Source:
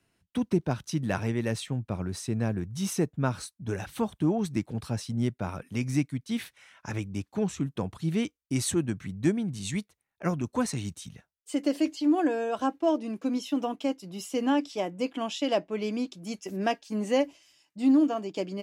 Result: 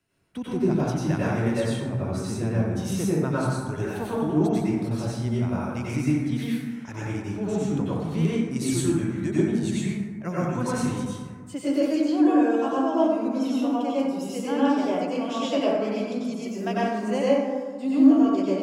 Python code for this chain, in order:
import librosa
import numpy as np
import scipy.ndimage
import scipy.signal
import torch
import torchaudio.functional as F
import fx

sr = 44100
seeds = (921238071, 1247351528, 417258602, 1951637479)

y = fx.rev_plate(x, sr, seeds[0], rt60_s=1.6, hf_ratio=0.35, predelay_ms=80, drr_db=-8.5)
y = F.gain(torch.from_numpy(y), -5.0).numpy()